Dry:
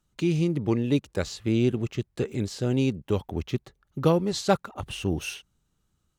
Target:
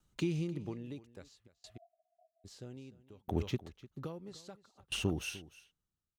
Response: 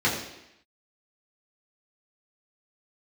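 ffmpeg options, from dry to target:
-filter_complex "[0:a]acompressor=threshold=-24dB:ratio=10,asplit=3[link_01][link_02][link_03];[link_01]afade=type=out:start_time=1.46:duration=0.02[link_04];[link_02]asuperpass=centerf=680:order=12:qfactor=6.9,afade=type=in:start_time=1.46:duration=0.02,afade=type=out:start_time=2.44:duration=0.02[link_05];[link_03]afade=type=in:start_time=2.44:duration=0.02[link_06];[link_04][link_05][link_06]amix=inputs=3:normalize=0,aecho=1:1:300:0.224,aeval=exprs='val(0)*pow(10,-30*if(lt(mod(0.61*n/s,1),2*abs(0.61)/1000),1-mod(0.61*n/s,1)/(2*abs(0.61)/1000),(mod(0.61*n/s,1)-2*abs(0.61)/1000)/(1-2*abs(0.61)/1000))/20)':channel_layout=same"

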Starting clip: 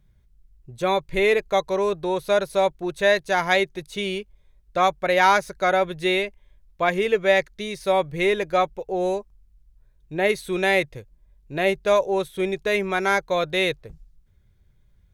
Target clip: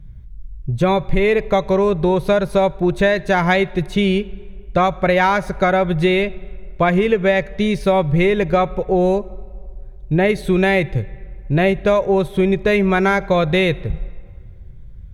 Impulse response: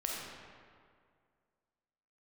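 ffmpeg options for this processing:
-filter_complex "[0:a]bass=frequency=250:gain=13,treble=frequency=4000:gain=-8,acompressor=threshold=-21dB:ratio=6,asplit=2[link_01][link_02];[1:a]atrim=start_sample=2205[link_03];[link_02][link_03]afir=irnorm=-1:irlink=0,volume=-21.5dB[link_04];[link_01][link_04]amix=inputs=2:normalize=0,volume=8.5dB"

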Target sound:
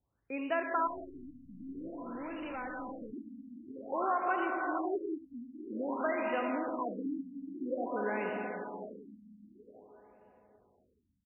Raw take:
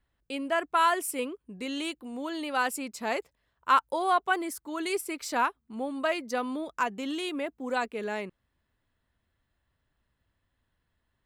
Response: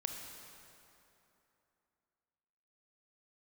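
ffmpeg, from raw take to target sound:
-filter_complex "[0:a]aecho=1:1:75:0.237[link_01];[1:a]atrim=start_sample=2205,asetrate=28665,aresample=44100[link_02];[link_01][link_02]afir=irnorm=-1:irlink=0,acrossover=split=870|1800[link_03][link_04][link_05];[link_03]acompressor=threshold=-28dB:ratio=4[link_06];[link_04]acompressor=threshold=-36dB:ratio=4[link_07];[link_05]acompressor=threshold=-35dB:ratio=4[link_08];[link_06][link_07][link_08]amix=inputs=3:normalize=0,highpass=69,asettb=1/sr,asplit=3[link_09][link_10][link_11];[link_09]atrim=end=0.874[link_12];[link_10]atrim=start=0.87:end=3.13,asetpts=PTS-STARTPTS,afade=type=in:duration=0.004:curve=qsin,afade=type=out:start_time=2.256:duration=0.004:curve=qsin,aeval=exprs='(tanh(50.1*val(0)+0.15)-tanh(0.15))/50.1':channel_layout=same[link_13];[link_11]atrim=start=3.126[link_14];[link_12][link_13]acrossfade=duration=0.004:curve1=hsin:curve2=qsin[link_15];[link_15][link_14]acrossfade=duration=0.004:curve1=qsin:curve2=hsin,afftfilt=real='re*lt(b*sr/1024,270*pow(3000/270,0.5+0.5*sin(2*PI*0.51*pts/sr)))':imag='im*lt(b*sr/1024,270*pow(3000/270,0.5+0.5*sin(2*PI*0.51*pts/sr)))':win_size=1024:overlap=0.75,volume=-3dB"

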